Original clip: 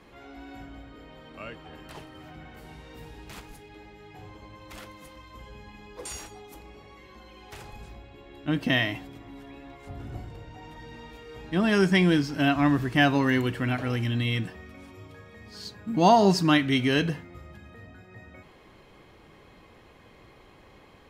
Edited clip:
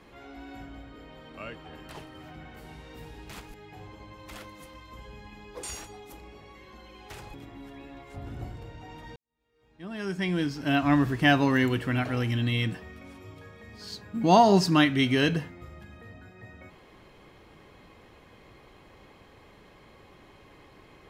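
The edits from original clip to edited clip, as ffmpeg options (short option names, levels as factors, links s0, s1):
-filter_complex "[0:a]asplit=4[s0][s1][s2][s3];[s0]atrim=end=3.542[s4];[s1]atrim=start=3.958:end=7.762[s5];[s2]atrim=start=9.068:end=10.89,asetpts=PTS-STARTPTS,afade=t=out:st=1.818:d=0.004:c=hsin[s6];[s3]atrim=start=10.89,asetpts=PTS-STARTPTS,afade=t=in:d=1.75:c=qua[s7];[s4][s5]acrossfade=d=0.004:c1=hsin:c2=hsin[s8];[s6][s7]concat=n=2:v=0:a=1[s9];[s8][s9]acrossfade=d=0.004:c1=hsin:c2=hsin"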